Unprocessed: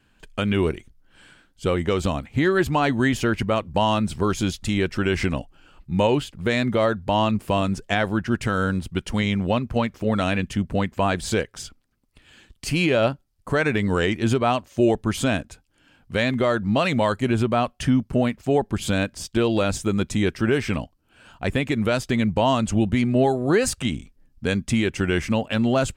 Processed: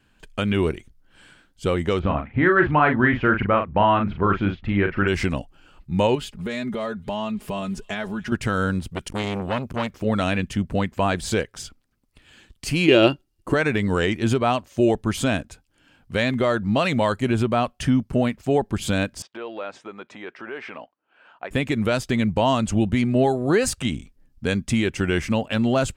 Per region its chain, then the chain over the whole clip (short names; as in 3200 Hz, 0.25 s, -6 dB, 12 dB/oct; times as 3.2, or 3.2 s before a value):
1.99–5.08 LPF 2500 Hz 24 dB/oct + dynamic EQ 1400 Hz, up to +7 dB, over -37 dBFS, Q 1.3 + doubler 40 ms -6 dB
6.15–8.32 comb 4.8 ms, depth 68% + compressor 2.5:1, threshold -28 dBFS + thin delay 0.291 s, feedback 65%, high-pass 2900 Hz, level -21 dB
8.91–9.91 high shelf 4400 Hz +7 dB + core saturation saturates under 1100 Hz
12.88–13.54 dynamic EQ 3500 Hz, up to +6 dB, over -40 dBFS, Q 0.73 + small resonant body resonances 340/2800 Hz, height 17 dB, ringing for 65 ms
19.22–21.51 compressor 4:1, threshold -22 dBFS + BPF 550–2100 Hz
whole clip: dry